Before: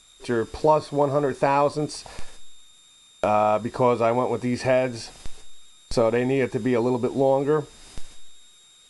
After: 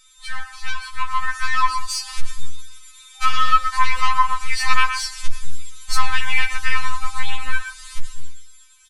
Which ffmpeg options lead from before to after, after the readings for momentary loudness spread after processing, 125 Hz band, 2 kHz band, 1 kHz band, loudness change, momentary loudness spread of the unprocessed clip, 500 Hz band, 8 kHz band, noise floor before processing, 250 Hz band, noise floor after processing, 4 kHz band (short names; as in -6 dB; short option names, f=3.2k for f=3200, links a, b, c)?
19 LU, n/a, +11.5 dB, +4.0 dB, +0.5 dB, 9 LU, under -35 dB, +10.0 dB, -54 dBFS, under -20 dB, -47 dBFS, +12.0 dB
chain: -filter_complex "[0:a]aresample=32000,aresample=44100,aeval=exprs='0.501*(cos(1*acos(clip(val(0)/0.501,-1,1)))-cos(1*PI/2))+0.0447*(cos(8*acos(clip(val(0)/0.501,-1,1)))-cos(8*PI/2))':c=same,afftfilt=real='re*(1-between(b*sr/4096,110,790))':imag='im*(1-between(b*sr/4096,110,790))':win_size=4096:overlap=0.75,dynaudnorm=f=350:g=9:m=12dB,asplit=2[a][b];[b]adelay=120,highpass=300,lowpass=3.4k,asoftclip=type=hard:threshold=-12dB,volume=-9dB[c];[a][c]amix=inputs=2:normalize=0,asplit=2[d][e];[e]acompressor=threshold=-23dB:ratio=6,volume=0dB[f];[d][f]amix=inputs=2:normalize=0,afftfilt=real='re*3.46*eq(mod(b,12),0)':imag='im*3.46*eq(mod(b,12),0)':win_size=2048:overlap=0.75,volume=-1dB"